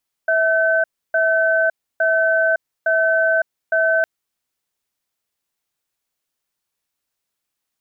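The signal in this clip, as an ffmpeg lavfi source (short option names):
-f lavfi -i "aevalsrc='0.15*(sin(2*PI*651*t)+sin(2*PI*1530*t))*clip(min(mod(t,0.86),0.56-mod(t,0.86))/0.005,0,1)':d=3.76:s=44100"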